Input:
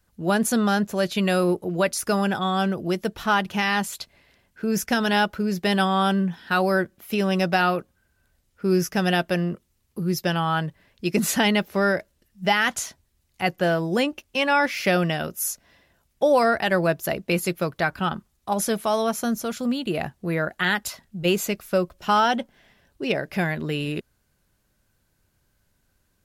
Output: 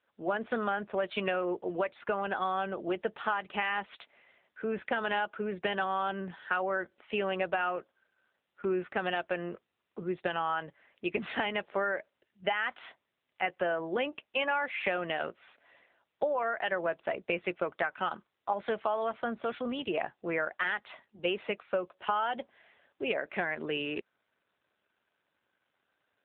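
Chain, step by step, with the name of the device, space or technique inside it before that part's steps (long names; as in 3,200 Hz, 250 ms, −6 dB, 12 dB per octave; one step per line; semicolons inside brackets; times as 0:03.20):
voicemail (band-pass filter 440–3,200 Hz; downward compressor 8 to 1, threshold −26 dBFS, peak gain reduction 10.5 dB; AMR narrowband 7.95 kbit/s 8,000 Hz)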